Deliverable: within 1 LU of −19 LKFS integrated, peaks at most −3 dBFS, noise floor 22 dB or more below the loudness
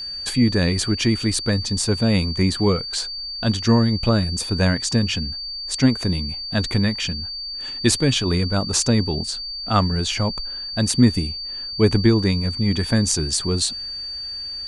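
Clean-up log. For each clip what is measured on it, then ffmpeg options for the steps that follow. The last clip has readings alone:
interfering tone 4,600 Hz; level of the tone −28 dBFS; integrated loudness −21.0 LKFS; sample peak −2.0 dBFS; target loudness −19.0 LKFS
→ -af "bandreject=frequency=4600:width=30"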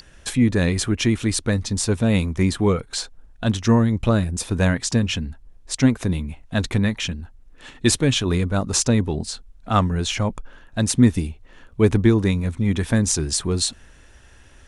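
interfering tone none found; integrated loudness −21.0 LKFS; sample peak −3.0 dBFS; target loudness −19.0 LKFS
→ -af "volume=2dB,alimiter=limit=-3dB:level=0:latency=1"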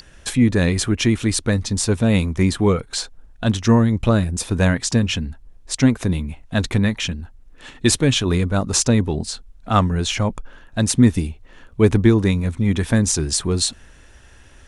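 integrated loudness −19.0 LKFS; sample peak −3.0 dBFS; background noise floor −47 dBFS

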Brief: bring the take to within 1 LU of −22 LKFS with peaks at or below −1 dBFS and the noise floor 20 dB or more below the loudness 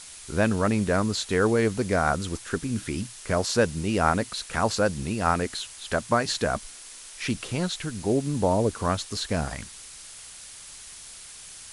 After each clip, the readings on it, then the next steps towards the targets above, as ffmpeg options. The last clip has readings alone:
background noise floor −44 dBFS; target noise floor −46 dBFS; integrated loudness −26.0 LKFS; sample peak −6.0 dBFS; target loudness −22.0 LKFS
→ -af "afftdn=noise_reduction=6:noise_floor=-44"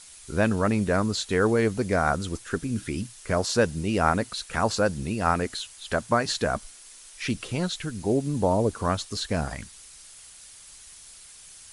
background noise floor −48 dBFS; integrated loudness −26.5 LKFS; sample peak −6.0 dBFS; target loudness −22.0 LKFS
→ -af "volume=4.5dB"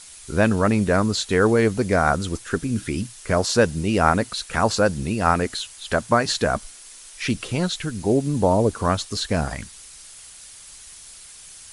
integrated loudness −22.0 LKFS; sample peak −1.5 dBFS; background noise floor −44 dBFS

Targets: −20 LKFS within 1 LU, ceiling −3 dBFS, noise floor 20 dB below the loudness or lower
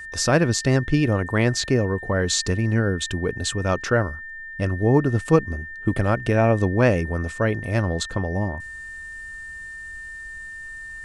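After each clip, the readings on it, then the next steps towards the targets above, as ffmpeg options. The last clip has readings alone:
interfering tone 1,800 Hz; level of the tone −34 dBFS; integrated loudness −22.0 LKFS; sample peak −3.5 dBFS; target loudness −20.0 LKFS
→ -af "bandreject=frequency=1800:width=30"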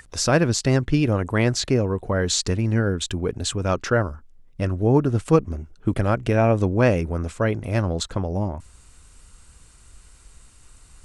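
interfering tone none found; integrated loudness −22.5 LKFS; sample peak −3.5 dBFS; target loudness −20.0 LKFS
→ -af "volume=2.5dB,alimiter=limit=-3dB:level=0:latency=1"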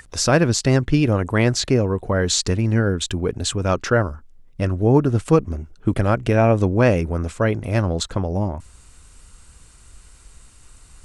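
integrated loudness −20.0 LKFS; sample peak −3.0 dBFS; background noise floor −49 dBFS

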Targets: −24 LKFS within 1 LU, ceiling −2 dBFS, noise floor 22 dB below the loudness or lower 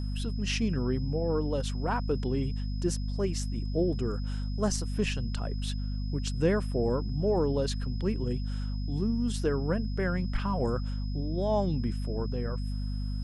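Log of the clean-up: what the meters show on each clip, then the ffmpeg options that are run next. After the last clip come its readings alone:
mains hum 50 Hz; hum harmonics up to 250 Hz; level of the hum −30 dBFS; interfering tone 5,100 Hz; level of the tone −50 dBFS; integrated loudness −31.0 LKFS; sample peak −13.5 dBFS; target loudness −24.0 LKFS
→ -af "bandreject=frequency=50:width_type=h:width=4,bandreject=frequency=100:width_type=h:width=4,bandreject=frequency=150:width_type=h:width=4,bandreject=frequency=200:width_type=h:width=4,bandreject=frequency=250:width_type=h:width=4"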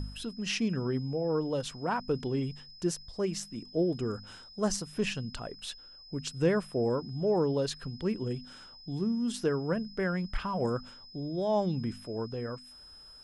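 mains hum none found; interfering tone 5,100 Hz; level of the tone −50 dBFS
→ -af "bandreject=frequency=5100:width=30"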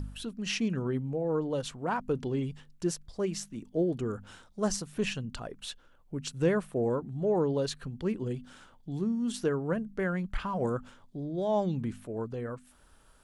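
interfering tone none found; integrated loudness −32.5 LKFS; sample peak −15.0 dBFS; target loudness −24.0 LKFS
→ -af "volume=8.5dB"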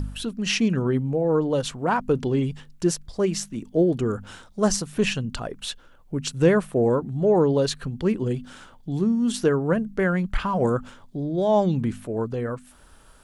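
integrated loudness −24.0 LKFS; sample peak −6.5 dBFS; background noise floor −51 dBFS

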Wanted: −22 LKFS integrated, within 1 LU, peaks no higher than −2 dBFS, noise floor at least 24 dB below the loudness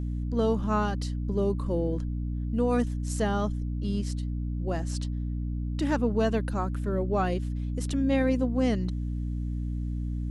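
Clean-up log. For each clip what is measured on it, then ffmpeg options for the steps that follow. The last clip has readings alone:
mains hum 60 Hz; hum harmonics up to 300 Hz; level of the hum −28 dBFS; integrated loudness −29.0 LKFS; sample peak −13.0 dBFS; target loudness −22.0 LKFS
→ -af "bandreject=frequency=60:width_type=h:width=4,bandreject=frequency=120:width_type=h:width=4,bandreject=frequency=180:width_type=h:width=4,bandreject=frequency=240:width_type=h:width=4,bandreject=frequency=300:width_type=h:width=4"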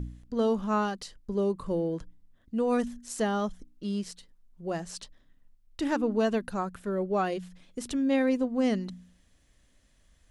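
mains hum none found; integrated loudness −30.0 LKFS; sample peak −15.0 dBFS; target loudness −22.0 LKFS
→ -af "volume=8dB"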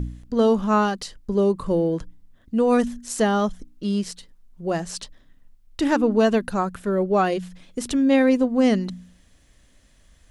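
integrated loudness −22.0 LKFS; sample peak −7.0 dBFS; background noise floor −56 dBFS

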